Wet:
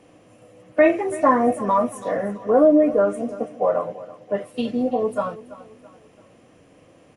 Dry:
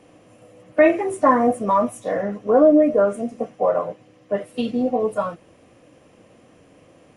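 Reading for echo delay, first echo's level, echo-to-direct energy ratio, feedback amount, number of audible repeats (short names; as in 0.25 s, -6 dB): 0.333 s, -17.5 dB, -16.5 dB, 41%, 3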